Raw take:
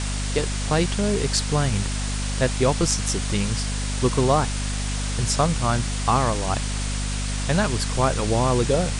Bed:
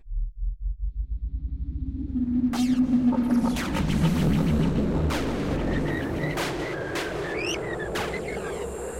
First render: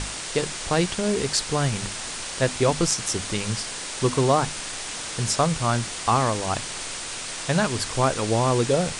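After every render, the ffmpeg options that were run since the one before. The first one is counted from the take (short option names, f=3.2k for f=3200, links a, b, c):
-af "bandreject=f=50:t=h:w=6,bandreject=f=100:t=h:w=6,bandreject=f=150:t=h:w=6,bandreject=f=200:t=h:w=6,bandreject=f=250:t=h:w=6"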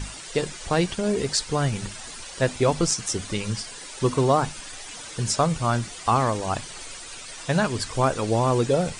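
-af "afftdn=nr=11:nf=-33"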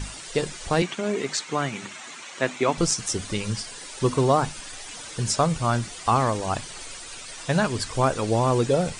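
-filter_complex "[0:a]asettb=1/sr,asplit=3[a][b][c];[a]atrim=end=0.824[d];[b]atrim=start=0.82:end=2.78,asetpts=PTS-STARTPTS,afade=t=in:d=0.004:c=qsin,afade=t=out:st=1.956:d=0.004:c=qsin,highpass=f=170:w=0.5412,highpass=f=170:w=1.3066,equalizer=f=190:t=q:w=4:g=-4,equalizer=f=490:t=q:w=4:g=-5,equalizer=f=1.2k:t=q:w=4:g=4,equalizer=f=2.2k:t=q:w=4:g=6,equalizer=f=4.9k:t=q:w=4:g=-8,lowpass=f=7.6k:w=0.5412,lowpass=f=7.6k:w=1.3066[e];[c]atrim=start=2.776[f];[d][e]acrossfade=d=0.004:c1=hsin:c2=qsin[g];[g][f]acrossfade=d=0.004:c1=qsin:c2=hsin"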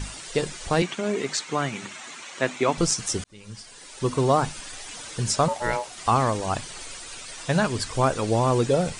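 -filter_complex "[0:a]asettb=1/sr,asplit=3[a][b][c];[a]atrim=end=5.484[d];[b]atrim=start=5.48:end=5.98,asetpts=PTS-STARTPTS,afade=t=in:d=0.004:c=qsin,afade=t=out:st=0.496:d=0.004:c=qsin,aeval=exprs='val(0)*sin(2*PI*730*n/s)':c=same[e];[c]atrim=start=5.976[f];[d][e]acrossfade=d=0.004:c1=hsin:c2=qsin[g];[g][f]acrossfade=d=0.004:c1=qsin:c2=hsin,asplit=2[h][i];[h]atrim=end=3.24,asetpts=PTS-STARTPTS,afade=t=out:st=3.236:d=0.004:c=hsin[j];[i]atrim=start=3.24,asetpts=PTS-STARTPTS,afade=t=in:d=1.13[k];[j][k]concat=n=2:v=0:a=1"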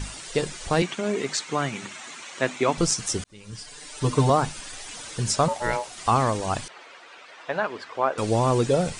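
-filter_complex "[0:a]asettb=1/sr,asplit=3[a][b][c];[a]atrim=end=3.524[d];[b]atrim=start=3.52:end=4.3,asetpts=PTS-STARTPTS,afade=t=in:d=0.004:c=qsin,afade=t=out:st=0.776:d=0.004:c=qsin,aecho=1:1:6.7:0.95,atrim=end_sample=34398[e];[c]atrim=start=4.296[f];[d][e]acrossfade=d=0.004:c1=hsin:c2=qsin[g];[g][f]acrossfade=d=0.004:c1=qsin:c2=hsin,asettb=1/sr,asplit=3[h][i][j];[h]atrim=end=6.684[k];[i]atrim=start=6.68:end=8.18,asetpts=PTS-STARTPTS,afade=t=in:d=0.004:c=qsin,afade=t=out:st=1.496:d=0.004:c=qsin,highpass=460,lowpass=2.2k[l];[j]atrim=start=8.176[m];[k][l]acrossfade=d=0.004:c1=hsin:c2=qsin[n];[n][m]acrossfade=d=0.004:c1=qsin:c2=hsin"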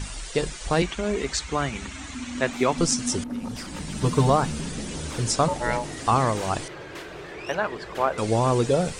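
-filter_complex "[1:a]volume=-9.5dB[a];[0:a][a]amix=inputs=2:normalize=0"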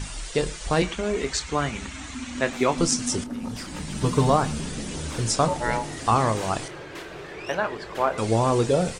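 -filter_complex "[0:a]asplit=2[a][b];[b]adelay=27,volume=-12dB[c];[a][c]amix=inputs=2:normalize=0,aecho=1:1:114:0.0794"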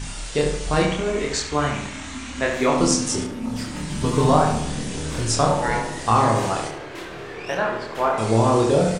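-filter_complex "[0:a]asplit=2[a][b];[b]adelay=27,volume=-5dB[c];[a][c]amix=inputs=2:normalize=0,asplit=2[d][e];[e]adelay=71,lowpass=f=2.8k:p=1,volume=-4.5dB,asplit=2[f][g];[g]adelay=71,lowpass=f=2.8k:p=1,volume=0.53,asplit=2[h][i];[i]adelay=71,lowpass=f=2.8k:p=1,volume=0.53,asplit=2[j][k];[k]adelay=71,lowpass=f=2.8k:p=1,volume=0.53,asplit=2[l][m];[m]adelay=71,lowpass=f=2.8k:p=1,volume=0.53,asplit=2[n][o];[o]adelay=71,lowpass=f=2.8k:p=1,volume=0.53,asplit=2[p][q];[q]adelay=71,lowpass=f=2.8k:p=1,volume=0.53[r];[f][h][j][l][n][p][r]amix=inputs=7:normalize=0[s];[d][s]amix=inputs=2:normalize=0"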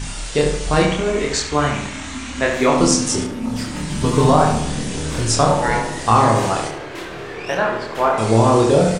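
-af "volume=4dB,alimiter=limit=-2dB:level=0:latency=1"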